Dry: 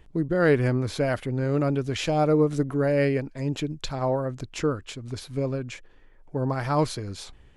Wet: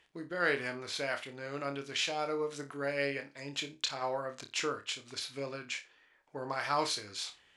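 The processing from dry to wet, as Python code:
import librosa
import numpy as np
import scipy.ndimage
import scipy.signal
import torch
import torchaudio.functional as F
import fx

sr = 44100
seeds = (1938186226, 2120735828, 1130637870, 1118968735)

p1 = fx.rider(x, sr, range_db=3, speed_s=2.0)
p2 = fx.bandpass_q(p1, sr, hz=3700.0, q=0.59)
y = p2 + fx.room_flutter(p2, sr, wall_m=4.9, rt60_s=0.23, dry=0)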